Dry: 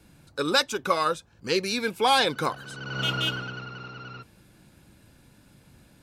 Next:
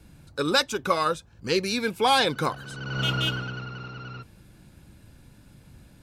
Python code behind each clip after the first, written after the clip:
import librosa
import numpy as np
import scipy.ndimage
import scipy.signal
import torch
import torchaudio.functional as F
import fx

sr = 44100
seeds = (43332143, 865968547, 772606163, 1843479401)

y = fx.low_shelf(x, sr, hz=130.0, db=9.5)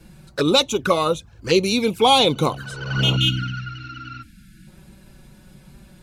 y = fx.spec_box(x, sr, start_s=3.16, length_s=1.51, low_hz=330.0, high_hz=1300.0, gain_db=-26)
y = fx.env_flanger(y, sr, rest_ms=6.5, full_db=-23.5)
y = y * librosa.db_to_amplitude(8.5)